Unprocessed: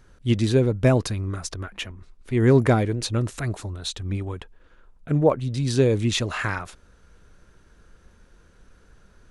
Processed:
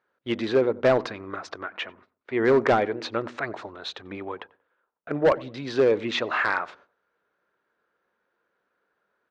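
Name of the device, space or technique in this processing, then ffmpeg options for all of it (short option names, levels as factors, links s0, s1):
walkie-talkie: -filter_complex "[0:a]highpass=490,lowpass=2700,bandreject=f=80.89:t=h:w=4,bandreject=f=161.78:t=h:w=4,bandreject=f=242.67:t=h:w=4,bandreject=f=323.56:t=h:w=4,asoftclip=type=hard:threshold=0.106,agate=range=0.141:threshold=0.00141:ratio=16:detection=peak,lowpass=5300,equalizer=f=2800:t=o:w=0.68:g=-3.5,asplit=2[s0][s1];[s1]adelay=92,lowpass=f=1100:p=1,volume=0.106,asplit=2[s2][s3];[s3]adelay=92,lowpass=f=1100:p=1,volume=0.31,asplit=2[s4][s5];[s5]adelay=92,lowpass=f=1100:p=1,volume=0.31[s6];[s0][s2][s4][s6]amix=inputs=4:normalize=0,volume=2"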